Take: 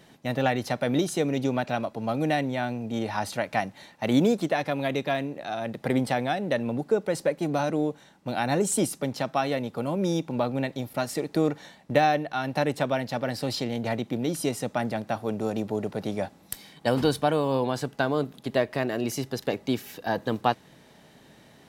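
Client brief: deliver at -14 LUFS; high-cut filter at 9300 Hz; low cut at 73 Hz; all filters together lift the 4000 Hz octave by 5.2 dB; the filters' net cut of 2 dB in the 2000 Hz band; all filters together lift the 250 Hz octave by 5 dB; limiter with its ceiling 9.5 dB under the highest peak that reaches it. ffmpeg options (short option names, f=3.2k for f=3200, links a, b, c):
-af "highpass=73,lowpass=9.3k,equalizer=f=250:t=o:g=6,equalizer=f=2k:t=o:g=-4.5,equalizer=f=4k:t=o:g=7.5,volume=13dB,alimiter=limit=-2dB:level=0:latency=1"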